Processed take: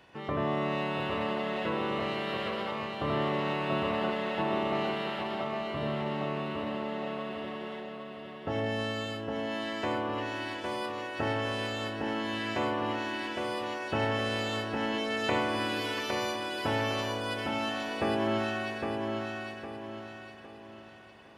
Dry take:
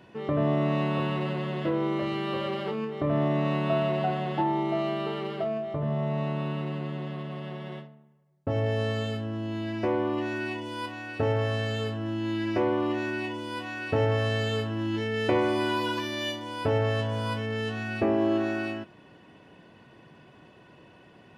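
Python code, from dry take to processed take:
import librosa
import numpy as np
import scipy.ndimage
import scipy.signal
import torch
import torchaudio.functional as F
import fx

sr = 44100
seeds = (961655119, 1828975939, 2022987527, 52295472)

p1 = fx.spec_clip(x, sr, under_db=14)
p2 = p1 + fx.echo_feedback(p1, sr, ms=809, feedback_pct=40, wet_db=-4, dry=0)
y = p2 * 10.0 ** (-5.0 / 20.0)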